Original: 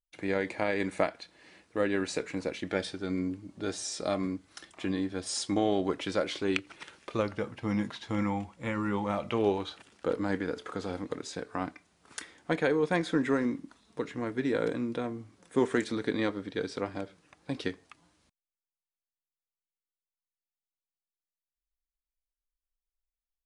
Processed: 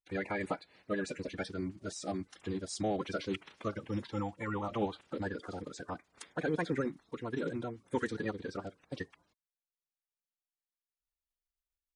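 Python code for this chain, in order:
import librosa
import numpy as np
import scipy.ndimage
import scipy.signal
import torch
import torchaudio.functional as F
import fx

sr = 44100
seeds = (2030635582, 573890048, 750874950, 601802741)

y = fx.spec_quant(x, sr, step_db=30)
y = fx.stretch_vocoder(y, sr, factor=0.51)
y = y * librosa.db_to_amplitude(-4.0)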